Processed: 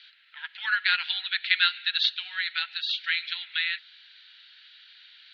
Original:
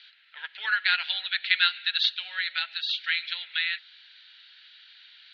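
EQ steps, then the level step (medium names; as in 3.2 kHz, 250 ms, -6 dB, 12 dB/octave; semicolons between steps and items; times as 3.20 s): high-pass 850 Hz 24 dB/octave; 0.0 dB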